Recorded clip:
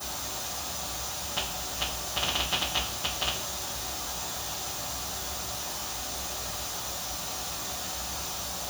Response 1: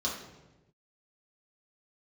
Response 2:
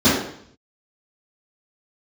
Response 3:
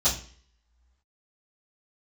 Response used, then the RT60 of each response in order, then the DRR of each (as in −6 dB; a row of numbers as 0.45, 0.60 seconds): 3; 1.1, 0.65, 0.45 seconds; −5.5, −13.5, −15.0 decibels